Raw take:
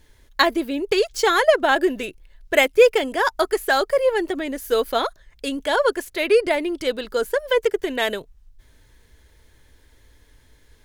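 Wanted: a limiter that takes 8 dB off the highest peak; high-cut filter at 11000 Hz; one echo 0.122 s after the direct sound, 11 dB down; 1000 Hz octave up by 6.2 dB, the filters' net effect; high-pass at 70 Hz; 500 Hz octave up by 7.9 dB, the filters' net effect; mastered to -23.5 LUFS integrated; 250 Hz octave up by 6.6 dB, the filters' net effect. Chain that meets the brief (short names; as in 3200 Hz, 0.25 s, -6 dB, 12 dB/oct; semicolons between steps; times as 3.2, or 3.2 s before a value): HPF 70 Hz; LPF 11000 Hz; bell 250 Hz +5.5 dB; bell 500 Hz +6.5 dB; bell 1000 Hz +5.5 dB; limiter -4.5 dBFS; echo 0.122 s -11 dB; gain -7.5 dB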